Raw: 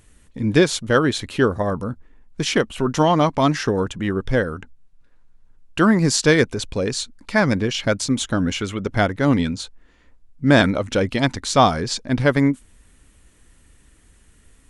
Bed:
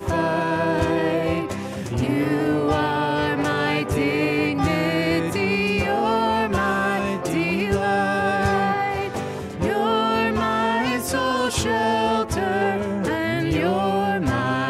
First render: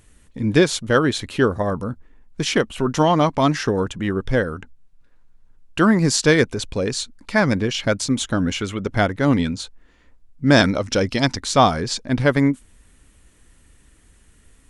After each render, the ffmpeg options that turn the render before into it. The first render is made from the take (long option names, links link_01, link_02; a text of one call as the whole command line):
ffmpeg -i in.wav -filter_complex "[0:a]asettb=1/sr,asplit=3[link_01][link_02][link_03];[link_01]atrim=end=10.514[link_04];[link_02]atrim=start=10.51:end=11.37,asetpts=PTS-STARTPTS,afade=type=in:duration=0.004:curve=qsin,afade=type=out:start_time=0.856:duration=0.004:curve=qsin,equalizer=frequency=5300:width_type=o:width=0.42:gain=12[link_05];[link_03]atrim=start=11.366[link_06];[link_04][link_05]acrossfade=duration=0.004:curve1=hsin:curve2=qsin[link_07];[link_07][link_06]acrossfade=duration=0.004:curve1=qsin:curve2=hsin" out.wav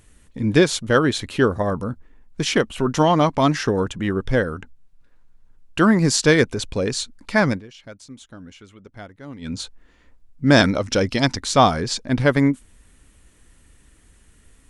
ffmpeg -i in.wav -filter_complex "[0:a]asplit=3[link_01][link_02][link_03];[link_01]atrim=end=7.62,asetpts=PTS-STARTPTS,afade=type=out:start_time=7.47:duration=0.15:silence=0.1[link_04];[link_02]atrim=start=7.62:end=9.41,asetpts=PTS-STARTPTS,volume=-20dB[link_05];[link_03]atrim=start=9.41,asetpts=PTS-STARTPTS,afade=type=in:duration=0.15:silence=0.1[link_06];[link_04][link_05][link_06]concat=n=3:v=0:a=1" out.wav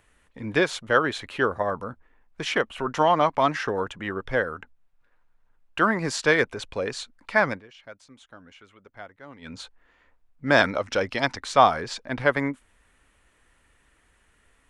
ffmpeg -i in.wav -filter_complex "[0:a]acrossover=split=510 2900:gain=0.224 1 0.251[link_01][link_02][link_03];[link_01][link_02][link_03]amix=inputs=3:normalize=0" out.wav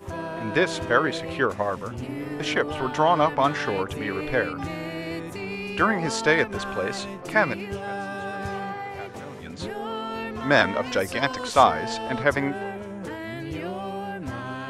ffmpeg -i in.wav -i bed.wav -filter_complex "[1:a]volume=-11dB[link_01];[0:a][link_01]amix=inputs=2:normalize=0" out.wav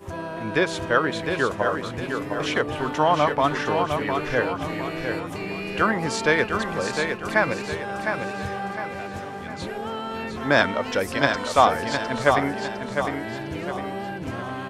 ffmpeg -i in.wav -af "aecho=1:1:707|1414|2121|2828|3535:0.501|0.21|0.0884|0.0371|0.0156" out.wav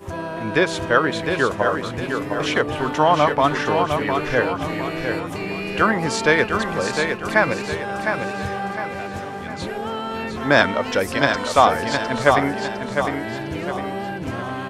ffmpeg -i in.wav -af "volume=3.5dB,alimiter=limit=-1dB:level=0:latency=1" out.wav